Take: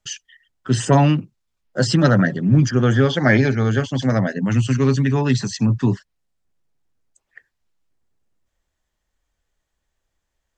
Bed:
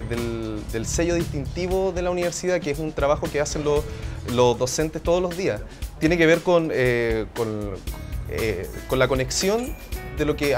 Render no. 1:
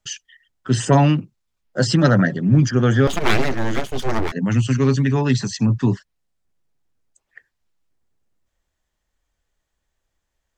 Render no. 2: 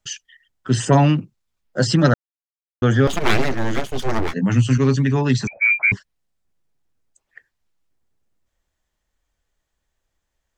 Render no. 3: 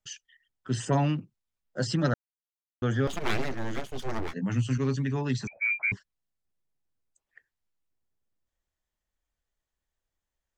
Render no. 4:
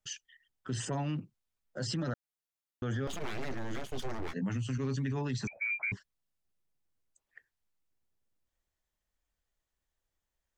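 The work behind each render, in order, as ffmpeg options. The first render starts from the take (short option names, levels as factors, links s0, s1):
-filter_complex "[0:a]asettb=1/sr,asplit=3[s0][s1][s2];[s0]atrim=end=3.074[s3];[s1]atrim=start=3.07:end=4.32,asetpts=PTS-STARTPTS,afade=t=in:d=0.004:c=qsin,afade=t=out:st=1.246:d=0.004:c=qsin,aeval=exprs='abs(val(0))':c=same[s4];[s2]atrim=start=4.316[s5];[s3][s4]acrossfade=d=0.004:c1=hsin:c2=qsin[s6];[s6][s5]acrossfade=d=0.004:c1=qsin:c2=hsin"
-filter_complex "[0:a]asettb=1/sr,asplit=3[s0][s1][s2];[s0]atrim=end=4.264[s3];[s1]atrim=start=4.26:end=4.78,asetpts=PTS-STARTPTS,afade=t=in:d=0.004:c=qsin,afade=t=out:st=0.516:d=0.004:c=qsin,asplit=2[s4][s5];[s5]adelay=16,volume=0.422[s6];[s4][s6]amix=inputs=2:normalize=0,atrim=end_sample=22932[s7];[s2]atrim=start=4.776[s8];[s3][s7]acrossfade=d=0.004:c1=hsin:c2=qsin[s9];[s9][s8]acrossfade=d=0.004:c1=qsin:c2=hsin,asettb=1/sr,asplit=3[s10][s11][s12];[s10]atrim=end=5.474[s13];[s11]atrim=start=5.47:end=5.92,asetpts=PTS-STARTPTS,afade=t=in:d=0.004:c=qsin,afade=t=out:st=0.446:d=0.004:c=qsin,lowpass=f=2100:t=q:w=0.5098,lowpass=f=2100:t=q:w=0.6013,lowpass=f=2100:t=q:w=0.9,lowpass=f=2100:t=q:w=2.563,afreqshift=-2500[s14];[s12]atrim=start=5.916[s15];[s13][s14]acrossfade=d=0.004:c1=hsin:c2=qsin[s16];[s16][s15]acrossfade=d=0.004:c1=qsin:c2=hsin,asplit=3[s17][s18][s19];[s17]atrim=end=2.14,asetpts=PTS-STARTPTS,afade=t=out:st=2.136:d=0.004:c=hsin[s20];[s18]atrim=start=2.14:end=2.82,asetpts=PTS-STARTPTS,volume=0[s21];[s19]atrim=start=2.82,asetpts=PTS-STARTPTS,afade=t=in:d=0.004:c=hsin[s22];[s20][s21][s22]concat=n=3:v=0:a=1"
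-af "volume=0.282"
-af "acompressor=threshold=0.0447:ratio=6,alimiter=level_in=1.41:limit=0.0631:level=0:latency=1:release=22,volume=0.708"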